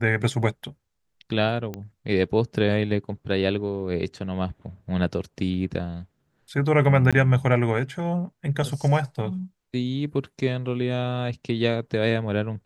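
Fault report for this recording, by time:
0:01.74: click −19 dBFS
0:07.11–0:07.13: drop-out 16 ms

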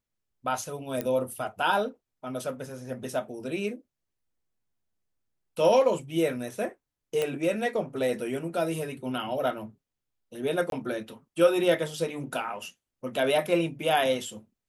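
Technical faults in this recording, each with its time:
0:01.01: click −15 dBFS
0:07.22: click −15 dBFS
0:10.70–0:10.72: drop-out 22 ms

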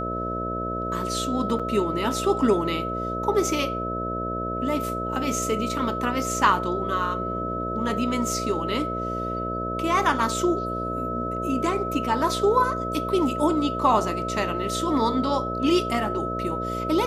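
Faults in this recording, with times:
mains buzz 60 Hz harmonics 11 −31 dBFS
whistle 1,300 Hz −29 dBFS
0:01.59–0:01.60: drop-out 6.1 ms

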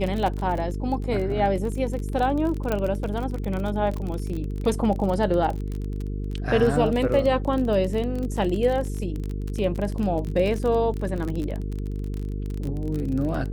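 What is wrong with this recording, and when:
mains buzz 50 Hz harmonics 9 −29 dBFS
surface crackle 31 per second −27 dBFS
0:02.72: click −12 dBFS

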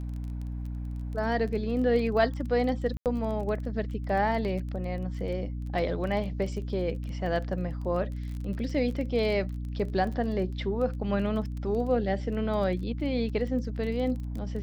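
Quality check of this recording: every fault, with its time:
surface crackle 20 per second −35 dBFS
mains hum 60 Hz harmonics 5 −34 dBFS
0:02.97–0:03.06: drop-out 88 ms

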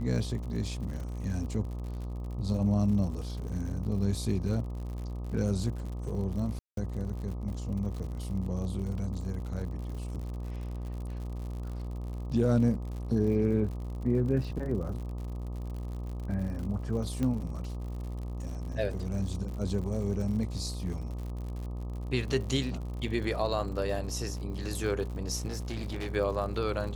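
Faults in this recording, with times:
mains buzz 60 Hz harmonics 21 −36 dBFS
surface crackle 80 per second −39 dBFS
0:06.59–0:06.77: drop-out 182 ms
0:17.23: click −20 dBFS
0:25.47–0:26.07: clipping −31 dBFS

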